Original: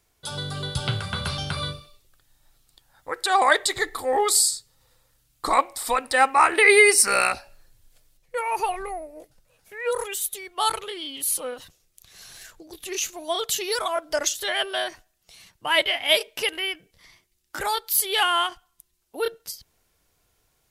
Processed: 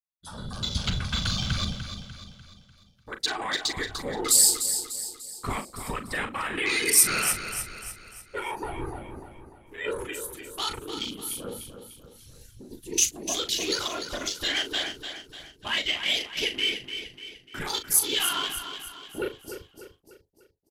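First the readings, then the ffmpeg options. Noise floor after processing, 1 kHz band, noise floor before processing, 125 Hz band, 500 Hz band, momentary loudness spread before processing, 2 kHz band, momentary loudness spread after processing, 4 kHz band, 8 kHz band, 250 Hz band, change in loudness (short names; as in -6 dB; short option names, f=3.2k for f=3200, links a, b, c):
-60 dBFS, -12.0 dB, -69 dBFS, n/a, -10.0 dB, 16 LU, -7.5 dB, 20 LU, -1.0 dB, +1.0 dB, +1.0 dB, -4.0 dB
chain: -filter_complex "[0:a]highshelf=f=10k:g=-10.5,afftfilt=real='re*lt(hypot(re,im),1.41)':imag='im*lt(hypot(re,im),1.41)':win_size=1024:overlap=0.75,afftfilt=real='hypot(re,im)*cos(2*PI*random(0))':imag='hypot(re,im)*sin(2*PI*random(1))':win_size=512:overlap=0.75,agate=range=-33dB:threshold=-58dB:ratio=3:detection=peak,alimiter=limit=-22dB:level=0:latency=1:release=140,asubboost=boost=8:cutoff=240,afwtdn=0.00891,crystalizer=i=7.5:c=0,asplit=2[a][b];[b]adelay=39,volume=-10dB[c];[a][c]amix=inputs=2:normalize=0,aecho=1:1:297|594|891|1188|1485:0.355|0.163|0.0751|0.0345|0.0159,volume=-2.5dB"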